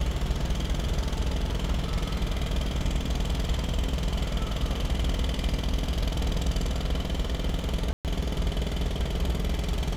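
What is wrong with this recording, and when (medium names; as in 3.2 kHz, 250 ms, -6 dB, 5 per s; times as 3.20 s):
7.93–8.05 s: dropout 118 ms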